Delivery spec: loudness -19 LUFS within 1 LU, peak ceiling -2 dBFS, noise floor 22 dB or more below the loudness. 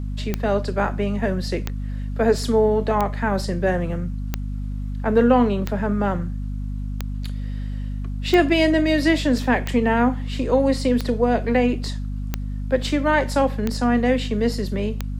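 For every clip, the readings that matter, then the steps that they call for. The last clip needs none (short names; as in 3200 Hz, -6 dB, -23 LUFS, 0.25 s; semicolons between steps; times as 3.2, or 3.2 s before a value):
clicks 12; hum 50 Hz; harmonics up to 250 Hz; hum level -25 dBFS; loudness -22.0 LUFS; peak -4.5 dBFS; loudness target -19.0 LUFS
-> de-click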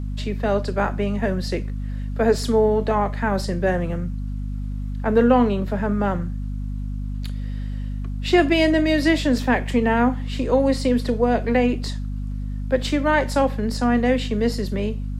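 clicks 0; hum 50 Hz; harmonics up to 250 Hz; hum level -25 dBFS
-> de-hum 50 Hz, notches 5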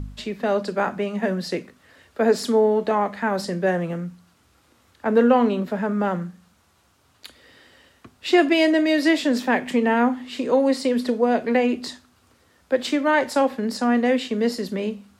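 hum none; loudness -21.5 LUFS; peak -5.5 dBFS; loudness target -19.0 LUFS
-> gain +2.5 dB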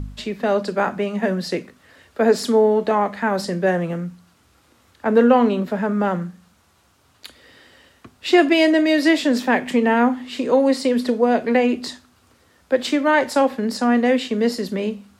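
loudness -19.0 LUFS; peak -3.0 dBFS; noise floor -58 dBFS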